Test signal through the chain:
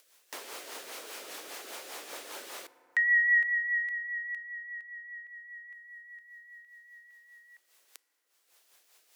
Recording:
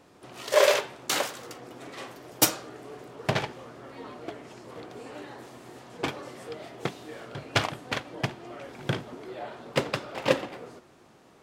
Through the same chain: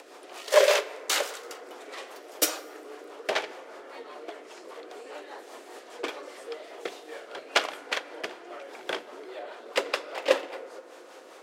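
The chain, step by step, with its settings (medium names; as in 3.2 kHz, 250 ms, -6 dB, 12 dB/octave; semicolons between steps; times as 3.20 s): high-pass 390 Hz 24 dB/octave; upward compressor, threshold -40 dBFS; rotary cabinet horn 5 Hz; FDN reverb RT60 3.9 s, high-frequency decay 0.25×, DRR 15.5 dB; trim +3 dB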